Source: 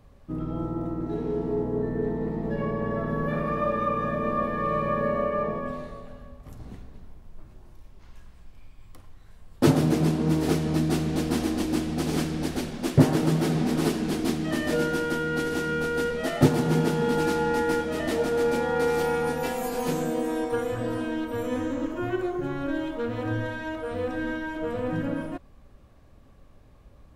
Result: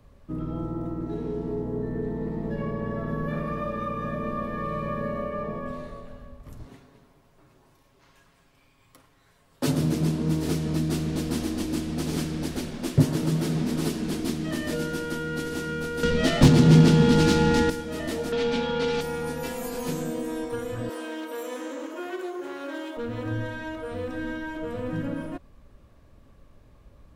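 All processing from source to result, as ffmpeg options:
ffmpeg -i in.wav -filter_complex "[0:a]asettb=1/sr,asplit=3[link_01][link_02][link_03];[link_01]atrim=end=6.654[link_04];[link_02]atrim=start=6.65:end=9.72,asetpts=PTS-STARTPTS,afade=type=in:duration=0.004:curve=qsin,afade=type=out:start_time=3.066:duration=0.004:curve=qsin,highpass=frequency=340:poles=1,aecho=1:1:7.3:0.5,atrim=end_sample=135387[link_05];[link_03]atrim=start=9.716[link_06];[link_04][link_05]acrossfade=duration=0.004:curve1=hsin:curve2=qsin[link_07];[link_07][link_06]acrossfade=duration=0.004:curve1=qsin:curve2=hsin,asettb=1/sr,asplit=3[link_08][link_09][link_10];[link_08]atrim=end=16.034[link_11];[link_09]atrim=start=16.03:end=17.7,asetpts=PTS-STARTPTS,afade=type=in:duration=0.004:curve=qsin,afade=type=out:start_time=1.666:duration=0.004:curve=qsin,highshelf=frequency=3000:gain=7,adynamicsmooth=sensitivity=2:basefreq=3000,aeval=exprs='0.596*sin(PI/2*2.82*val(0)/0.596)':channel_layout=same[link_12];[link_10]atrim=start=17.696[link_13];[link_11][link_12]acrossfade=duration=0.004:curve1=hsin:curve2=qsin[link_14];[link_14][link_13]acrossfade=duration=0.004:curve1=qsin:curve2=hsin,asettb=1/sr,asplit=3[link_15][link_16][link_17];[link_15]atrim=end=18.324[link_18];[link_16]atrim=start=18.32:end=19.01,asetpts=PTS-STARTPTS,afade=type=in:duration=0.004:curve=qsin,afade=type=out:start_time=0.686:duration=0.004:curve=qsin,lowpass=3900,equalizer=frequency=2900:width=0.48:gain=11,aecho=1:1:4.5:0.92,atrim=end_sample=30429[link_19];[link_17]atrim=start=19.006[link_20];[link_18][link_19]acrossfade=duration=0.004:curve1=hsin:curve2=qsin[link_21];[link_21][link_20]acrossfade=duration=0.004:curve1=qsin:curve2=hsin,asettb=1/sr,asplit=3[link_22][link_23][link_24];[link_22]atrim=end=20.894[link_25];[link_23]atrim=start=20.89:end=22.97,asetpts=PTS-STARTPTS,afade=type=in:duration=0.004:curve=qsin,afade=type=out:start_time=2.076:duration=0.004:curve=qsin,highshelf=frequency=3800:gain=6,aeval=exprs='clip(val(0),-1,0.0447)':channel_layout=same,highpass=frequency=330:width=0.5412,highpass=frequency=330:width=1.3066[link_26];[link_24]atrim=start=22.966[link_27];[link_25][link_26]acrossfade=duration=0.004:curve1=hsin:curve2=qsin[link_28];[link_28][link_27]acrossfade=duration=0.004:curve1=qsin:curve2=hsin,bandreject=frequency=770:width=12,acrossover=split=250|3000[link_29][link_30][link_31];[link_30]acompressor=threshold=-34dB:ratio=2[link_32];[link_29][link_32][link_31]amix=inputs=3:normalize=0" out.wav

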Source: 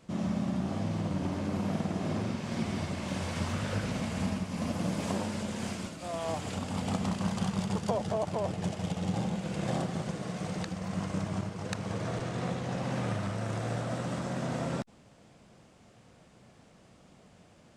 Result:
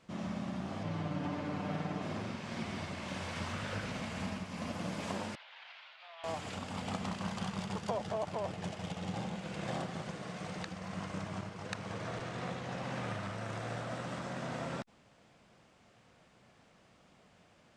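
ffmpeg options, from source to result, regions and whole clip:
ffmpeg -i in.wav -filter_complex "[0:a]asettb=1/sr,asplit=3[link_01][link_02][link_03];[link_01]atrim=end=0.834[link_04];[link_02]atrim=start=0.83:end=2.02,asetpts=PTS-STARTPTS,afade=type=in:duration=0.004:curve=qsin,afade=type=out:start_time=1.186:duration=0.004:curve=qsin,highshelf=frequency=5700:gain=-10,aecho=1:1:6.8:0.87,atrim=end_sample=52479[link_05];[link_03]atrim=start=2.016[link_06];[link_04][link_05]acrossfade=duration=0.004:curve1=hsin:curve2=qsin[link_07];[link_07][link_06]acrossfade=duration=0.004:curve1=qsin:curve2=hsin,asettb=1/sr,asplit=3[link_08][link_09][link_10];[link_08]atrim=end=5.354[link_11];[link_09]atrim=start=5.35:end=6.24,asetpts=PTS-STARTPTS,afade=type=in:duration=0.004:curve=qsin,afade=type=out:start_time=0.886:duration=0.004:curve=qsin,equalizer=frequency=1100:width_type=o:width=0.95:gain=-7,acompressor=threshold=-37dB:ratio=2.5:attack=3.2:release=140:knee=1:detection=peak,asuperpass=centerf=1800:order=8:qfactor=0.57[link_12];[link_10]atrim=start=6.236[link_13];[link_11][link_12]acrossfade=duration=0.004:curve1=hsin:curve2=qsin[link_14];[link_14][link_13]acrossfade=duration=0.004:curve1=qsin:curve2=hsin,lowpass=frequency=2600:poles=1,tiltshelf=frequency=840:gain=-5.5,volume=-3dB" out.wav

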